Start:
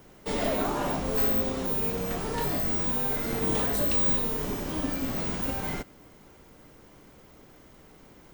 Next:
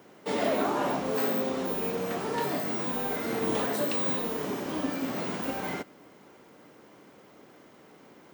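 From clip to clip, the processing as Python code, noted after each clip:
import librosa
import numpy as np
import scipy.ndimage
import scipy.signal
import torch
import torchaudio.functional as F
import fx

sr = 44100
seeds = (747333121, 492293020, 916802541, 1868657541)

y = scipy.signal.sosfilt(scipy.signal.butter(2, 210.0, 'highpass', fs=sr, output='sos'), x)
y = fx.high_shelf(y, sr, hz=4800.0, db=-8.0)
y = y * 10.0 ** (2.0 / 20.0)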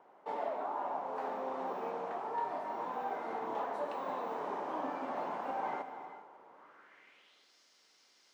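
y = fx.rev_gated(x, sr, seeds[0], gate_ms=460, shape='flat', drr_db=8.5)
y = fx.filter_sweep_bandpass(y, sr, from_hz=860.0, to_hz=5000.0, start_s=6.5, end_s=7.54, q=2.7)
y = fx.rider(y, sr, range_db=10, speed_s=0.5)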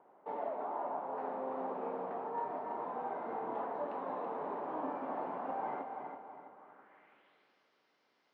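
y = fx.spacing_loss(x, sr, db_at_10k=39)
y = fx.echo_feedback(y, sr, ms=329, feedback_pct=38, wet_db=-7.5)
y = y * 10.0 ** (1.0 / 20.0)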